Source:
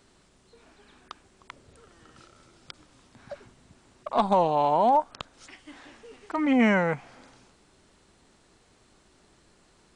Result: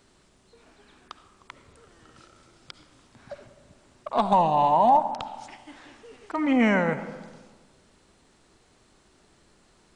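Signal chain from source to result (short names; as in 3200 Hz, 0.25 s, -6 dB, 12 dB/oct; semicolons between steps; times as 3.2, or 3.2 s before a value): 4.32–4.97 comb 1.1 ms, depth 62%; on a send: reverb RT60 1.4 s, pre-delay 30 ms, DRR 11 dB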